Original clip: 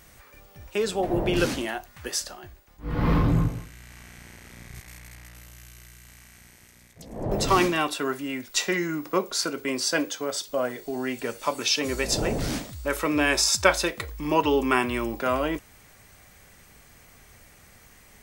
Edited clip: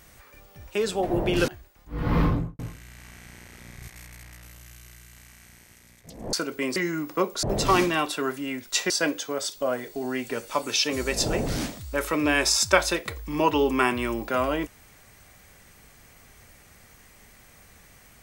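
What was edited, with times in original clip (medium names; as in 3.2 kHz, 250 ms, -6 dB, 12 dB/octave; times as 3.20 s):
1.48–2.40 s: delete
3.13–3.51 s: studio fade out
7.25–8.72 s: swap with 9.39–9.82 s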